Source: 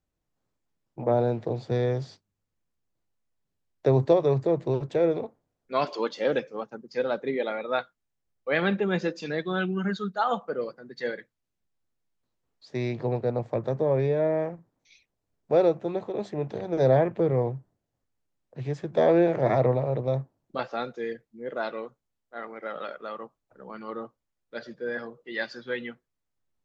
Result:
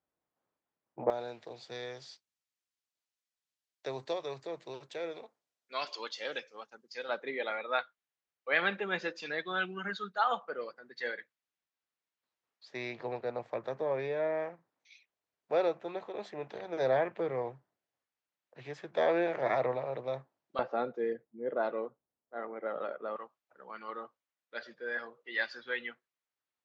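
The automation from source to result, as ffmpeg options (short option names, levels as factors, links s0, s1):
-af "asetnsamples=n=441:p=0,asendcmd='1.1 bandpass f 4700;7.09 bandpass f 2100;20.59 bandpass f 520;23.16 bandpass f 2000',bandpass=f=950:t=q:w=0.62:csg=0"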